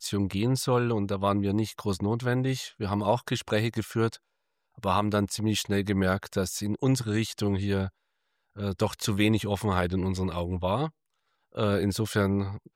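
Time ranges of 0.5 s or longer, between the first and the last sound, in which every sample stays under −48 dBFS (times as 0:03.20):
0:04.17–0:04.78
0:07.89–0:08.56
0:10.90–0:11.55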